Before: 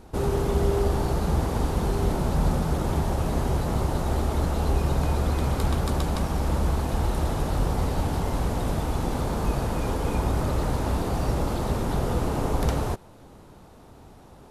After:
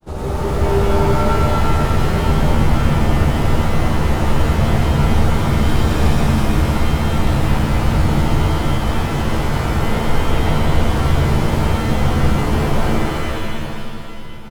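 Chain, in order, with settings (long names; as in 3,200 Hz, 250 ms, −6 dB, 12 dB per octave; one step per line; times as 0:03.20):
running median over 3 samples
granular cloud
on a send: single-tap delay 317 ms −8 dB
on the sum: reverb with rising layers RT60 2.2 s, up +7 semitones, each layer −2 dB, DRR −6 dB
level −1.5 dB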